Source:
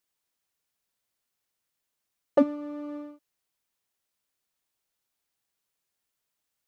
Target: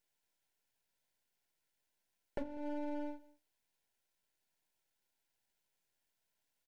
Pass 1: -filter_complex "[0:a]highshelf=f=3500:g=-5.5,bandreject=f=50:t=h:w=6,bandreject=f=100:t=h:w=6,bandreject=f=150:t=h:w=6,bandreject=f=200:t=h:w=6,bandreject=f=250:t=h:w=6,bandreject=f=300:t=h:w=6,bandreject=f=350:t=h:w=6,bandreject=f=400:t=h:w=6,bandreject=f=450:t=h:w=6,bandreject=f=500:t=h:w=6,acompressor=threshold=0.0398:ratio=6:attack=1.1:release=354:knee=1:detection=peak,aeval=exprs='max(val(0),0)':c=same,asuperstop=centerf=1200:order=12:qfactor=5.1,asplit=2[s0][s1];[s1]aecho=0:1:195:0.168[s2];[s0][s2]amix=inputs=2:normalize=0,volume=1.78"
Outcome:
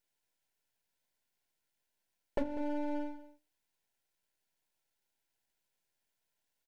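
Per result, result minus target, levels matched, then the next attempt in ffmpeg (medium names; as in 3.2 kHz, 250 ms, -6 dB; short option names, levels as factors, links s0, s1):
compression: peak gain reduction -7 dB; echo-to-direct +7 dB
-filter_complex "[0:a]highshelf=f=3500:g=-5.5,bandreject=f=50:t=h:w=6,bandreject=f=100:t=h:w=6,bandreject=f=150:t=h:w=6,bandreject=f=200:t=h:w=6,bandreject=f=250:t=h:w=6,bandreject=f=300:t=h:w=6,bandreject=f=350:t=h:w=6,bandreject=f=400:t=h:w=6,bandreject=f=450:t=h:w=6,bandreject=f=500:t=h:w=6,acompressor=threshold=0.015:ratio=6:attack=1.1:release=354:knee=1:detection=peak,aeval=exprs='max(val(0),0)':c=same,asuperstop=centerf=1200:order=12:qfactor=5.1,asplit=2[s0][s1];[s1]aecho=0:1:195:0.168[s2];[s0][s2]amix=inputs=2:normalize=0,volume=1.78"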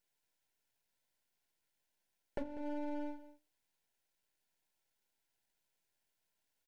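echo-to-direct +7 dB
-filter_complex "[0:a]highshelf=f=3500:g=-5.5,bandreject=f=50:t=h:w=6,bandreject=f=100:t=h:w=6,bandreject=f=150:t=h:w=6,bandreject=f=200:t=h:w=6,bandreject=f=250:t=h:w=6,bandreject=f=300:t=h:w=6,bandreject=f=350:t=h:w=6,bandreject=f=400:t=h:w=6,bandreject=f=450:t=h:w=6,bandreject=f=500:t=h:w=6,acompressor=threshold=0.015:ratio=6:attack=1.1:release=354:knee=1:detection=peak,aeval=exprs='max(val(0),0)':c=same,asuperstop=centerf=1200:order=12:qfactor=5.1,asplit=2[s0][s1];[s1]aecho=0:1:195:0.075[s2];[s0][s2]amix=inputs=2:normalize=0,volume=1.78"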